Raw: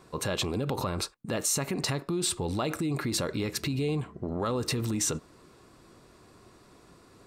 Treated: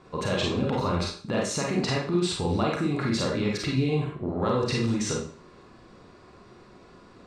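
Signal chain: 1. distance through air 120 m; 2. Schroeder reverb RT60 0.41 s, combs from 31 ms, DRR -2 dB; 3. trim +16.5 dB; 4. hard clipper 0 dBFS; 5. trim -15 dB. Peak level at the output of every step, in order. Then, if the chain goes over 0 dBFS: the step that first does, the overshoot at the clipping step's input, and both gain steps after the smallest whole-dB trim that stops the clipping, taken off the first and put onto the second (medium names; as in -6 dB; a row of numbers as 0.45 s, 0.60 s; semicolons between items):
-17.0 dBFS, -13.5 dBFS, +3.0 dBFS, 0.0 dBFS, -15.0 dBFS; step 3, 3.0 dB; step 3 +13.5 dB, step 5 -12 dB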